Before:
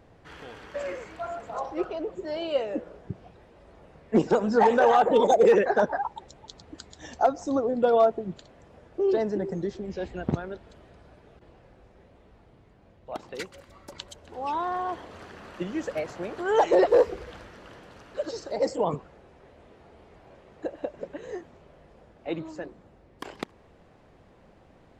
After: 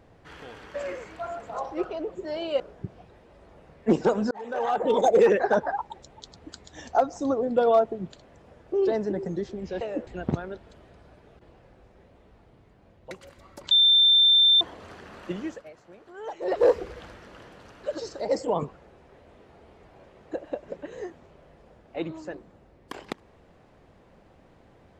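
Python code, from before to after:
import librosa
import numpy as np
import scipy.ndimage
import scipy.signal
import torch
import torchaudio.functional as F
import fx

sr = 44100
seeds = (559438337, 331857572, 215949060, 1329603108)

y = fx.edit(x, sr, fx.move(start_s=2.6, length_s=0.26, to_s=10.07),
    fx.fade_in_span(start_s=4.57, length_s=0.81),
    fx.cut(start_s=13.11, length_s=0.31),
    fx.bleep(start_s=14.02, length_s=0.9, hz=3570.0, db=-14.5),
    fx.fade_down_up(start_s=15.7, length_s=1.27, db=-15.5, fade_s=0.24), tone=tone)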